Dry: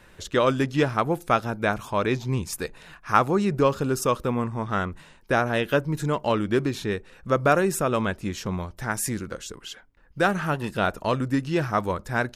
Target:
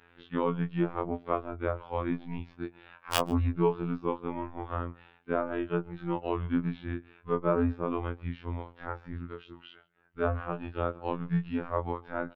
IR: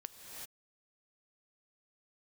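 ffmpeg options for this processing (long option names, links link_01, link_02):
-filter_complex "[0:a]acrossover=split=810|1300[link_01][link_02][link_03];[link_03]acompressor=threshold=-41dB:ratio=6[link_04];[link_01][link_02][link_04]amix=inputs=3:normalize=0,highpass=frequency=170:width_type=q:width=0.5412,highpass=frequency=170:width_type=q:width=1.307,lowpass=frequency=3500:width_type=q:width=0.5176,lowpass=frequency=3500:width_type=q:width=0.7071,lowpass=frequency=3500:width_type=q:width=1.932,afreqshift=-110,aeval=exprs='(mod(2.51*val(0)+1,2)-1)/2.51':channel_layout=same,asplit=2[link_05][link_06];[link_06]adelay=139.9,volume=-24dB,highshelf=frequency=4000:gain=-3.15[link_07];[link_05][link_07]amix=inputs=2:normalize=0,afftfilt=real='hypot(re,im)*cos(PI*b)':imag='0':win_size=2048:overlap=0.75,afftfilt=real='re*2*eq(mod(b,4),0)':imag='im*2*eq(mod(b,4),0)':win_size=2048:overlap=0.75,volume=-5.5dB"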